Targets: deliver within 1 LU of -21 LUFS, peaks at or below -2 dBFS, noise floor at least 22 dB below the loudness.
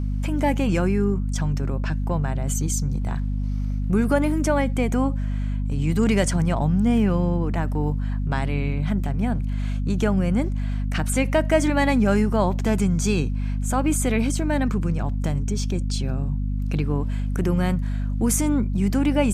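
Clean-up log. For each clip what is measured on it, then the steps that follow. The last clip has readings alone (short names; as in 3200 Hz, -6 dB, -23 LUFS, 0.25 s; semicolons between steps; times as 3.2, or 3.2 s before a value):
hum 50 Hz; harmonics up to 250 Hz; hum level -22 dBFS; loudness -23.5 LUFS; peak -7.0 dBFS; loudness target -21.0 LUFS
-> de-hum 50 Hz, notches 5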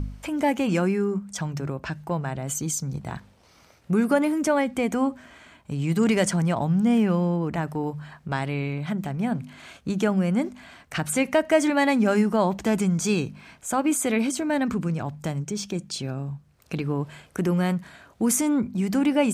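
hum none; loudness -25.0 LUFS; peak -9.0 dBFS; loudness target -21.0 LUFS
-> gain +4 dB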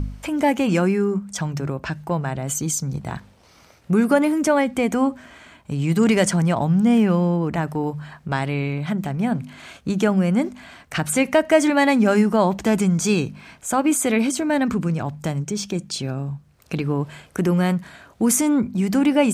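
loudness -21.0 LUFS; peak -5.0 dBFS; noise floor -53 dBFS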